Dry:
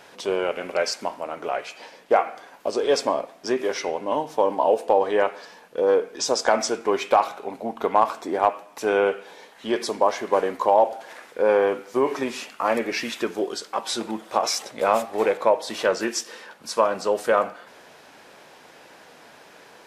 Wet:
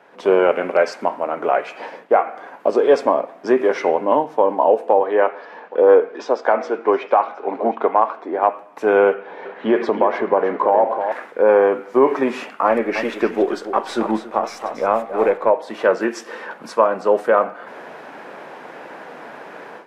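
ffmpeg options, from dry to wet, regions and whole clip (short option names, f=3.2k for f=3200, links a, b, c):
-filter_complex "[0:a]asettb=1/sr,asplit=3[a][b][c];[a]atrim=end=5.004[d];[b]atrim=start=5:end=8.43,asetpts=PTS-STARTPTS,afade=t=in:d=0.004:c=qsin,afade=t=out:st=3.426:d=0.004:c=qsin,acrossover=split=220 5200:gain=0.158 1 0.0708[e][f][g];[e][f][g]amix=inputs=3:normalize=0,aecho=1:1:717:0.0841,atrim=end_sample=151263[h];[c]atrim=start=8.426[i];[d][h]acrossfade=d=0.004:c1=hsin:c2=qsin[j];[j][i]acrossfade=d=0.004:c1=qsin:c2=hsin,asettb=1/sr,asplit=3[k][l][m];[k]atrim=end=9.144[n];[l]atrim=start=9.14:end=11.12,asetpts=PTS-STARTPTS,afade=t=in:d=0.004:c=qsin,afade=t=out:st=1.976:d=0.004:c=qsin,lowpass=3.2k,acompressor=threshold=-24dB:ratio=2.5:attack=3.2:release=140:knee=1:detection=peak,aecho=1:1:313:0.376,atrim=end_sample=87318[o];[m]atrim=start=11.116[p];[n][o]acrossfade=d=0.004:c1=hsin:c2=qsin[q];[q][p]acrossfade=d=0.004:c1=qsin:c2=hsin,asettb=1/sr,asplit=3[r][s][t];[r]atrim=end=12.674[u];[s]atrim=start=12.67:end=15.5,asetpts=PTS-STARTPTS,afade=t=in:d=0.004:c=qsin,afade=t=out:st=2.826:d=0.004:c=qsin,aeval=exprs='if(lt(val(0),0),0.708*val(0),val(0))':c=same,aecho=1:1:280:0.266,atrim=end_sample=124803[v];[t]atrim=start=15.496[w];[u][v]acrossfade=d=0.004:c1=hsin:c2=qsin[x];[x][w]acrossfade=d=0.004:c1=qsin:c2=hsin,dynaudnorm=f=130:g=3:m=14.5dB,acrossover=split=150 2200:gain=0.126 1 0.126[y][z][aa];[y][z][aa]amix=inputs=3:normalize=0,volume=-1dB"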